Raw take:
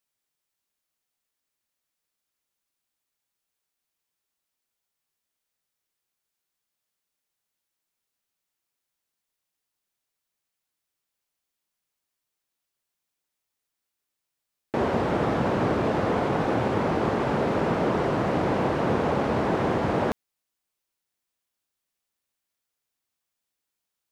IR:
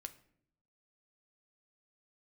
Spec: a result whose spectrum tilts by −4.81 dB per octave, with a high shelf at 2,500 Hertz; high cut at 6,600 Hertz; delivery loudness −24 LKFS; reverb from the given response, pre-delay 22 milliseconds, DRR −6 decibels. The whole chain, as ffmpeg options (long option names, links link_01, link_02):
-filter_complex "[0:a]lowpass=6600,highshelf=frequency=2500:gain=-7.5,asplit=2[link_01][link_02];[1:a]atrim=start_sample=2205,adelay=22[link_03];[link_02][link_03]afir=irnorm=-1:irlink=0,volume=10.5dB[link_04];[link_01][link_04]amix=inputs=2:normalize=0,volume=-5.5dB"